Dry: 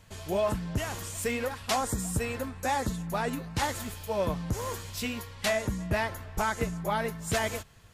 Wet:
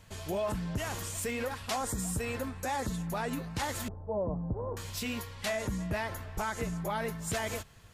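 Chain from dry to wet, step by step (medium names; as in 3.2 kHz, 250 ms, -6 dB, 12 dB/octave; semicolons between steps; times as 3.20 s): 3.88–4.77 s: inverse Chebyshev low-pass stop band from 2.9 kHz, stop band 60 dB; peak limiter -25 dBFS, peak gain reduction 5.5 dB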